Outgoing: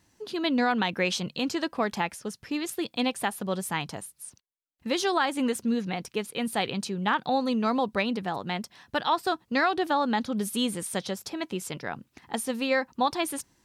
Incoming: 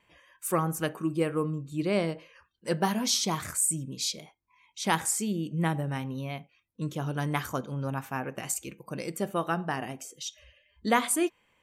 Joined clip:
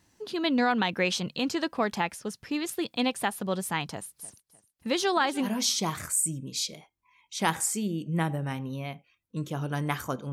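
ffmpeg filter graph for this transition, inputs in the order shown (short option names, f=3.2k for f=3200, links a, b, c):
-filter_complex "[0:a]asettb=1/sr,asplit=3[a][b][c];[a]atrim=end=3.894[d];[b]atrim=start=3.89:end=5.49,asetpts=PTS-STARTPTS,afade=t=in:d=0.004:c=qsin,afade=t=out:st=1.596:d=0.004:c=qsin,aecho=1:1:303|606|909:0.126|0.0428|0.0146,atrim=end_sample=70560[e];[c]atrim=start=5.486[f];[d][e]acrossfade=d=0.004:c1=hsin:c2=qsin[g];[g][f]acrossfade=d=0.004:c1=qsin:c2=hsin,apad=whole_dur=10.32,atrim=end=10.32,atrim=end=5.49,asetpts=PTS-STARTPTS[h];[1:a]atrim=start=2.86:end=7.77,asetpts=PTS-STARTPTS[i];[h][i]acrossfade=d=0.08:c1=tri:c2=tri"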